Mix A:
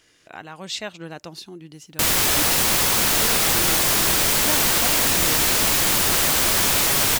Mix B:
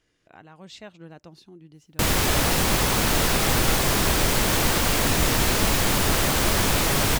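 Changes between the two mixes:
speech -11.0 dB; master: add tilt -2 dB/oct

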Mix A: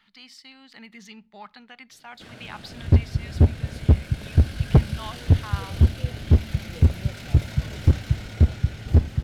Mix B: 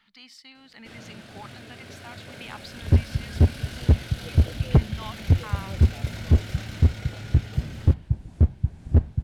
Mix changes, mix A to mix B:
speech: send -6.0 dB; first sound: entry -1.35 s; second sound: send -10.0 dB

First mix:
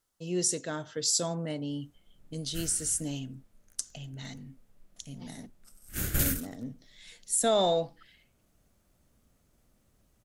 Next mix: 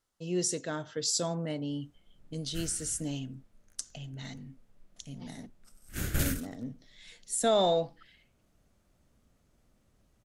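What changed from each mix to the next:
master: add high shelf 10000 Hz -11.5 dB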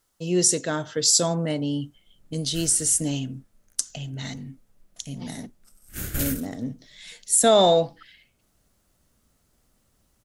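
speech +8.5 dB; master: add high shelf 10000 Hz +11.5 dB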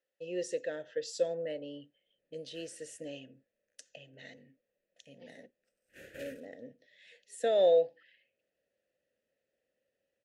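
master: add vowel filter e

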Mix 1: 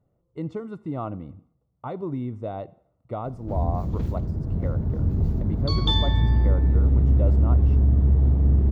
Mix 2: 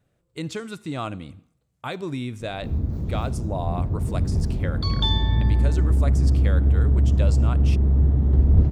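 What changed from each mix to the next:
speech: remove polynomial smoothing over 65 samples; background: entry -0.85 s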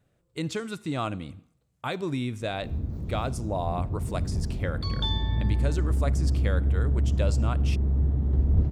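background -6.0 dB

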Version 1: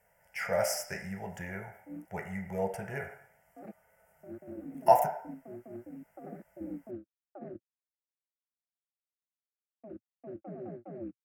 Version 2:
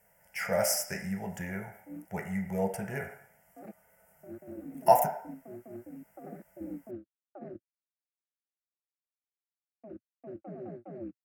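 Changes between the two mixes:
speech: add bell 220 Hz +7 dB 0.95 oct; master: add high shelf 5700 Hz +8.5 dB

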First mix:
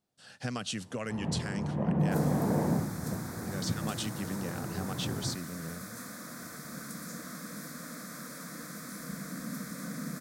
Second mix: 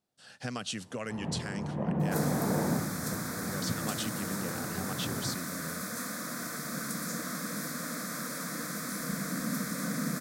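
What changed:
second sound +7.0 dB; master: add low shelf 180 Hz -4.5 dB

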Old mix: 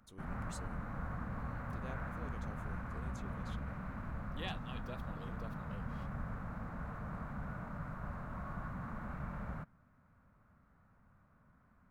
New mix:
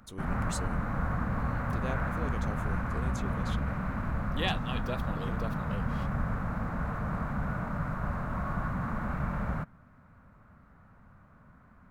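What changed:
speech +12.0 dB; background +10.5 dB

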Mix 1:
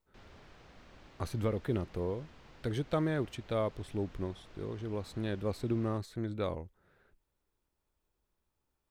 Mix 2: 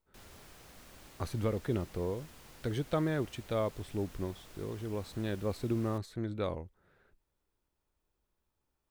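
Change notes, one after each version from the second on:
background: remove air absorption 170 m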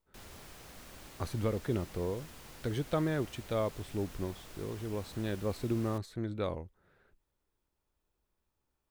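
background +3.5 dB

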